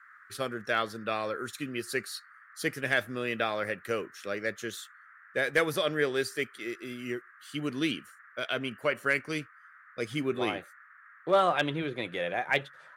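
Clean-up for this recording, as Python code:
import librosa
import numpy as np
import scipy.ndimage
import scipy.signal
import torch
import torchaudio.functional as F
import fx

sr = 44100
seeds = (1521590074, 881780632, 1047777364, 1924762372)

y = fx.fix_declip(x, sr, threshold_db=-14.0)
y = fx.noise_reduce(y, sr, print_start_s=10.76, print_end_s=11.26, reduce_db=21.0)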